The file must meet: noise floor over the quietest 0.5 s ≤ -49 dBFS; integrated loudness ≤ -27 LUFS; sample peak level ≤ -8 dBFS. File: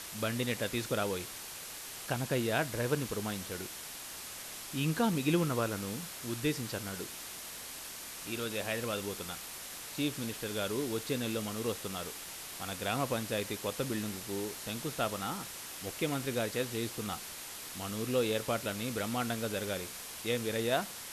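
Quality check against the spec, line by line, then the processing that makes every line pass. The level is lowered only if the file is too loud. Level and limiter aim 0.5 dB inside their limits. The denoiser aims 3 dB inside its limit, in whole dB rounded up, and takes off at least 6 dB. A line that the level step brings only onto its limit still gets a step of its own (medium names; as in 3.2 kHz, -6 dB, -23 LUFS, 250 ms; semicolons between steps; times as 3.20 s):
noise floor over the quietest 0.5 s -45 dBFS: fail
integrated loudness -35.5 LUFS: pass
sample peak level -15.5 dBFS: pass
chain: noise reduction 7 dB, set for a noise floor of -45 dBFS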